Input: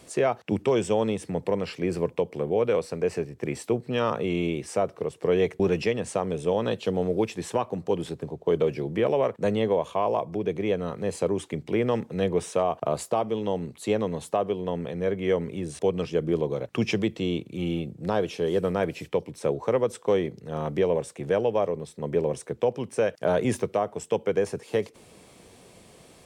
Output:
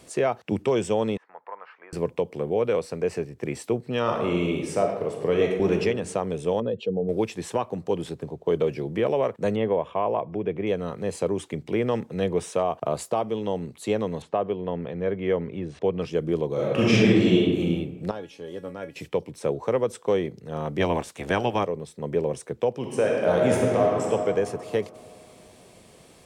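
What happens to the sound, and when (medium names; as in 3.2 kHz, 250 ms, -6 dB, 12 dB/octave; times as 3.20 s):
1.17–1.93 s: Butterworth band-pass 1.2 kHz, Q 1.5
4.01–5.73 s: reverb throw, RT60 1.1 s, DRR 2 dB
6.60–7.09 s: spectral contrast enhancement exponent 1.8
9.56–10.67 s: Savitzky-Golay filter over 25 samples
14.22–16.02 s: low-pass 3 kHz
16.53–17.59 s: reverb throw, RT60 1.3 s, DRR -8 dB
18.11–18.96 s: feedback comb 280 Hz, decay 0.21 s, mix 80%
20.79–21.63 s: spectral peaks clipped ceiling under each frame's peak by 18 dB
22.76–24.11 s: reverb throw, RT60 2.7 s, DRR -2 dB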